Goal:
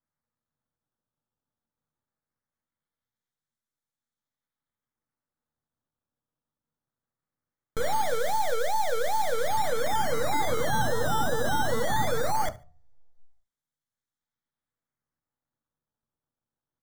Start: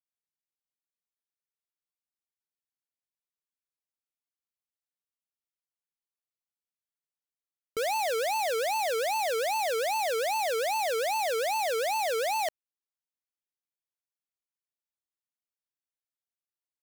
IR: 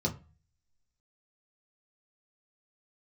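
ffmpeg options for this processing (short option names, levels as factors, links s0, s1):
-filter_complex "[0:a]highshelf=f=9900:g=-5.5,acrusher=samples=11:mix=1:aa=0.000001:lfo=1:lforange=17.6:lforate=0.2,aeval=exprs='max(val(0),0)':c=same,asuperstop=centerf=2700:order=4:qfactor=2.9,aecho=1:1:72|144:0.0891|0.0205,asplit=2[s0][s1];[1:a]atrim=start_sample=2205[s2];[s1][s2]afir=irnorm=-1:irlink=0,volume=0.224[s3];[s0][s3]amix=inputs=2:normalize=0,volume=2.24"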